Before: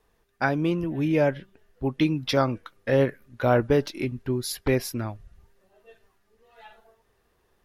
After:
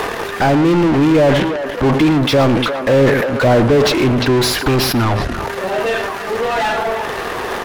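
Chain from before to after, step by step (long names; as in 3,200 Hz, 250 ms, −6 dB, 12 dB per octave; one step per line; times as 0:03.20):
dynamic equaliser 1,600 Hz, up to −8 dB, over −43 dBFS, Q 1.5
in parallel at +2 dB: upward compression, threshold −29 dBFS
on the sum: leveller curve on the samples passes 2
0:04.62–0:05.11: phaser with its sweep stopped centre 2,100 Hz, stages 6
far-end echo of a speakerphone 350 ms, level −26 dB
mid-hump overdrive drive 37 dB, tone 1,700 Hz, clips at −8.5 dBFS
on a send: single-tap delay 110 ms −15 dB
on the sum: level that may fall only so fast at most 36 dB per second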